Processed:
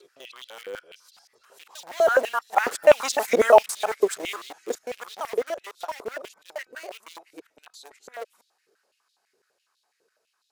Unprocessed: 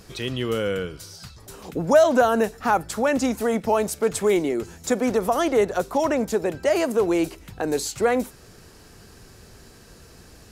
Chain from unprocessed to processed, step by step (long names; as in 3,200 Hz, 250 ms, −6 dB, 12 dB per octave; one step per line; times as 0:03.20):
reversed piece by piece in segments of 164 ms
source passing by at 0:03.26, 10 m/s, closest 3.6 metres
in parallel at −6.5 dB: bit reduction 6 bits
on the sum: high-pass on a step sequencer 12 Hz 430–3,700 Hz